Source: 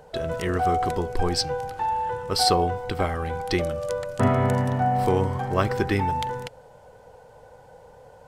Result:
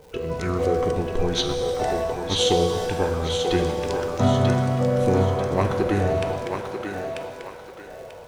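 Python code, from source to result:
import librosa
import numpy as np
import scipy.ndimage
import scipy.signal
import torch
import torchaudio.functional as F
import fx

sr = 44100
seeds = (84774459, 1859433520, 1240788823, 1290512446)

p1 = x + fx.echo_thinned(x, sr, ms=940, feedback_pct=36, hz=450.0, wet_db=-4.5, dry=0)
p2 = fx.dmg_crackle(p1, sr, seeds[0], per_s=290.0, level_db=-42.0)
p3 = fx.formant_shift(p2, sr, semitones=-5)
y = fx.rev_shimmer(p3, sr, seeds[1], rt60_s=1.8, semitones=7, shimmer_db=-8, drr_db=5.5)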